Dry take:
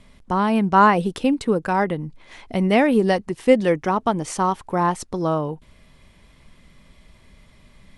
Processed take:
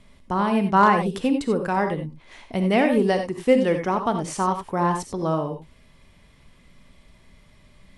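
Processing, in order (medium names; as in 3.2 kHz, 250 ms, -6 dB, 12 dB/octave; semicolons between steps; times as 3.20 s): gated-style reverb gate 110 ms rising, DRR 6 dB; hard clipper -4.5 dBFS, distortion -37 dB; trim -3 dB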